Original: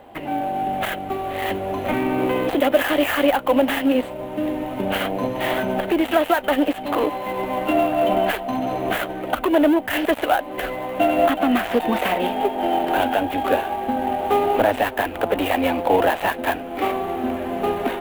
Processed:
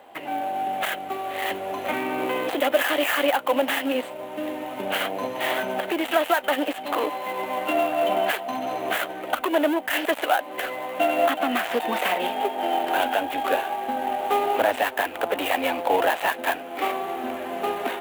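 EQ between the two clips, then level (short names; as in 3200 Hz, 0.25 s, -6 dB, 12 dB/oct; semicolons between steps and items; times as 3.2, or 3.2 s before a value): HPF 700 Hz 6 dB/oct; bell 7400 Hz +2.5 dB; 0.0 dB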